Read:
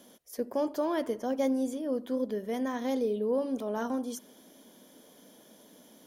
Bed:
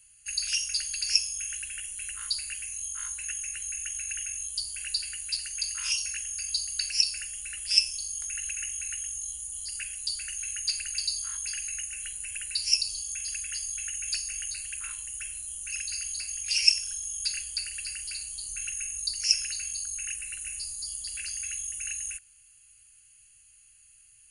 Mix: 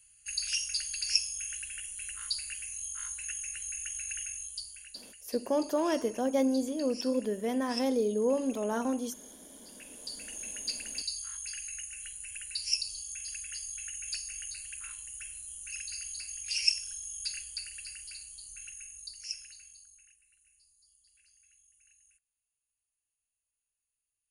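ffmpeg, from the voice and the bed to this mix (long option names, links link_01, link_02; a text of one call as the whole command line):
ffmpeg -i stem1.wav -i stem2.wav -filter_complex "[0:a]adelay=4950,volume=1dB[link_01];[1:a]volume=7dB,afade=type=out:start_time=4.22:duration=0.71:silence=0.223872,afade=type=in:start_time=9.74:duration=0.68:silence=0.298538,afade=type=out:start_time=17.31:duration=2.85:silence=0.0595662[link_02];[link_01][link_02]amix=inputs=2:normalize=0" out.wav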